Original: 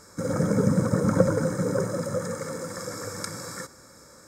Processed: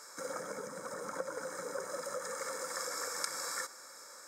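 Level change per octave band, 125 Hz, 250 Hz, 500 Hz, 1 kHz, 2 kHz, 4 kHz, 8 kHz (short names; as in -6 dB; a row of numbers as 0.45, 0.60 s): -34.0, -27.0, -13.5, -5.5, -4.0, -1.5, -2.5 dB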